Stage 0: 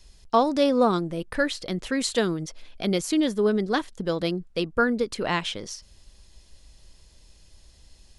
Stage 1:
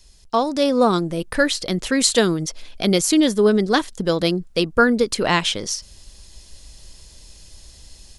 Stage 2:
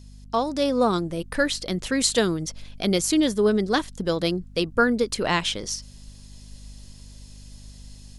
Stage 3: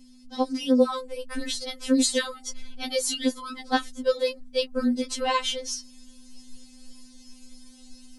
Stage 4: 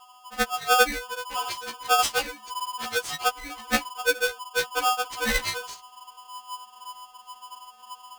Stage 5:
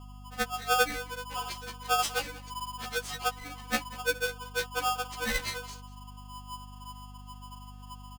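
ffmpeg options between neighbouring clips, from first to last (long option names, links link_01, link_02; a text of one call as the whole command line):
ffmpeg -i in.wav -af "bass=frequency=250:gain=0,treble=frequency=4000:gain=6,dynaudnorm=framelen=510:gausssize=3:maxgain=8dB" out.wav
ffmpeg -i in.wav -af "aeval=exprs='val(0)+0.0112*(sin(2*PI*50*n/s)+sin(2*PI*2*50*n/s)/2+sin(2*PI*3*50*n/s)/3+sin(2*PI*4*50*n/s)/4+sin(2*PI*5*50*n/s)/5)':channel_layout=same,volume=-4.5dB" out.wav
ffmpeg -i in.wav -af "afftfilt=real='re*3.46*eq(mod(b,12),0)':imag='im*3.46*eq(mod(b,12),0)':win_size=2048:overlap=0.75" out.wav
ffmpeg -i in.wav -af "adynamicsmooth=sensitivity=4:basefreq=1500,aeval=exprs='val(0)*sgn(sin(2*PI*1000*n/s))':channel_layout=same" out.wav
ffmpeg -i in.wav -af "aeval=exprs='val(0)+0.0112*(sin(2*PI*50*n/s)+sin(2*PI*2*50*n/s)/2+sin(2*PI*3*50*n/s)/3+sin(2*PI*4*50*n/s)/4+sin(2*PI*5*50*n/s)/5)':channel_layout=same,aecho=1:1:191:0.112,volume=-6dB" out.wav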